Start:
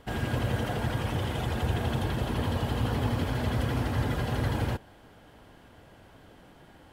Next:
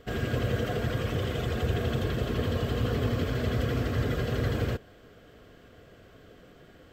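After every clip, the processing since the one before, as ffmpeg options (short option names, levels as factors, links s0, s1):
-af "superequalizer=7b=1.78:9b=0.282:16b=0.282"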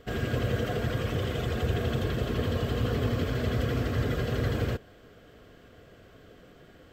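-af anull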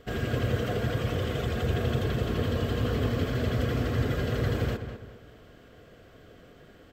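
-filter_complex "[0:a]asplit=2[s0][s1];[s1]adelay=202,lowpass=f=3100:p=1,volume=0.355,asplit=2[s2][s3];[s3]adelay=202,lowpass=f=3100:p=1,volume=0.37,asplit=2[s4][s5];[s5]adelay=202,lowpass=f=3100:p=1,volume=0.37,asplit=2[s6][s7];[s7]adelay=202,lowpass=f=3100:p=1,volume=0.37[s8];[s0][s2][s4][s6][s8]amix=inputs=5:normalize=0"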